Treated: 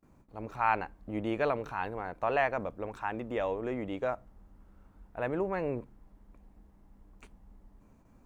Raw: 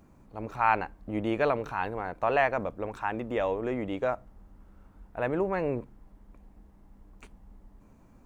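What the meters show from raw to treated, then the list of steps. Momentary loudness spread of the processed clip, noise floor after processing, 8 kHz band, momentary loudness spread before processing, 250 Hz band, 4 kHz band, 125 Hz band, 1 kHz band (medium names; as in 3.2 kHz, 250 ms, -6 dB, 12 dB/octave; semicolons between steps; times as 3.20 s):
11 LU, -62 dBFS, no reading, 11 LU, -3.5 dB, -3.5 dB, -3.5 dB, -3.5 dB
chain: gate with hold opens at -48 dBFS; trim -3.5 dB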